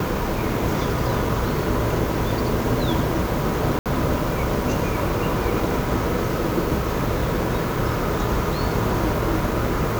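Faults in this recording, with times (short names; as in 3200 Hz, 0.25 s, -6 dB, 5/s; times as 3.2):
3.79–3.86 gap 67 ms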